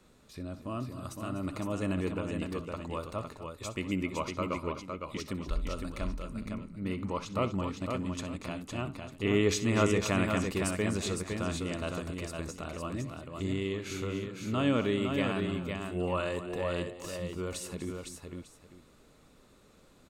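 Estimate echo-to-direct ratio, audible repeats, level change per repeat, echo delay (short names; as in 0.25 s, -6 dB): -4.0 dB, 4, no steady repeat, 64 ms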